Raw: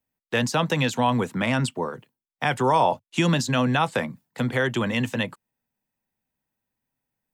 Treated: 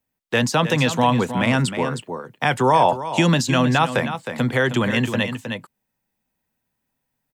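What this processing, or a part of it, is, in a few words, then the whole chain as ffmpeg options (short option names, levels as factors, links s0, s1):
ducked delay: -filter_complex "[0:a]asplit=3[s0][s1][s2];[s1]adelay=313,volume=0.794[s3];[s2]apad=whole_len=337164[s4];[s3][s4]sidechaincompress=threshold=0.0562:ratio=8:attack=16:release=1480[s5];[s0][s5]amix=inputs=2:normalize=0,volume=1.58"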